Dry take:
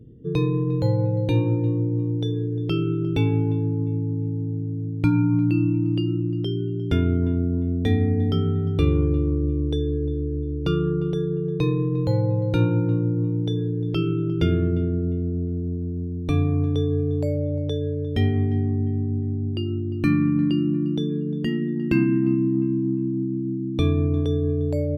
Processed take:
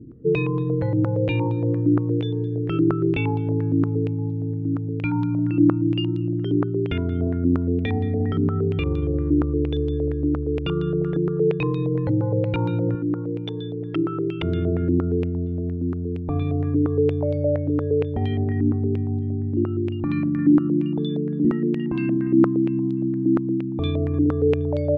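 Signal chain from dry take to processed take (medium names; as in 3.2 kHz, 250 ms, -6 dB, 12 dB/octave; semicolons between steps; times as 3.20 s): peak limiter -16 dBFS, peak gain reduction 8.5 dB; 12.95–14.43 s: tilt EQ +2.5 dB/octave; step-sequenced low-pass 8.6 Hz 310–3700 Hz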